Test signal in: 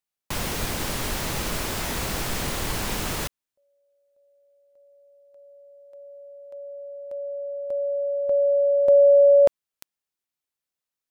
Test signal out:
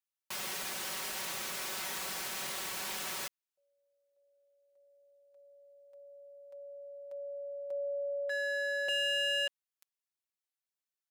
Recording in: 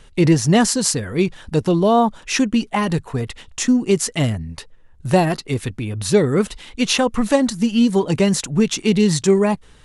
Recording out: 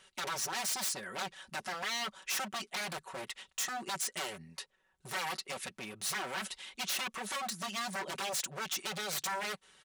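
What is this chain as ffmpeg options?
-af "alimiter=limit=0.376:level=0:latency=1:release=183,aeval=exprs='0.0841*(abs(mod(val(0)/0.0841+3,4)-2)-1)':c=same,highpass=f=1000:p=1,aecho=1:1:5.3:0.63,volume=0.398"

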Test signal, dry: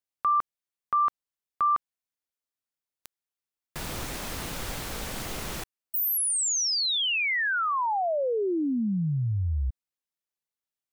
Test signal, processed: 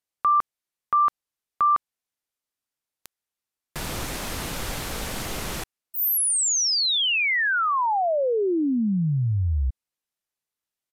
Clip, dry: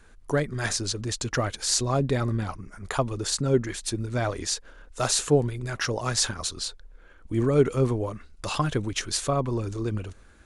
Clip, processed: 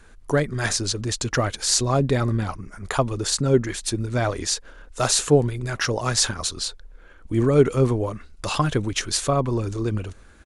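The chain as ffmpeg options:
-af "aresample=32000,aresample=44100,volume=1.58"

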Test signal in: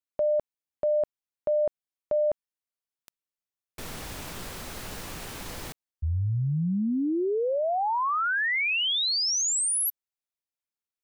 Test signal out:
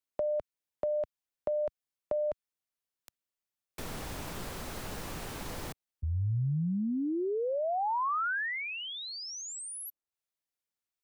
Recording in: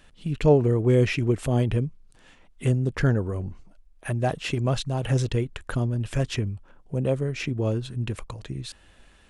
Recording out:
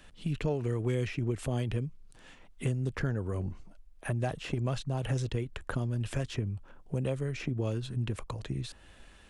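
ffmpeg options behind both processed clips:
-filter_complex "[0:a]acrossover=split=97|1400[s0][s1][s2];[s0]acompressor=threshold=0.0112:ratio=4[s3];[s1]acompressor=threshold=0.0282:ratio=4[s4];[s2]acompressor=threshold=0.00631:ratio=4[s5];[s3][s4][s5]amix=inputs=3:normalize=0"

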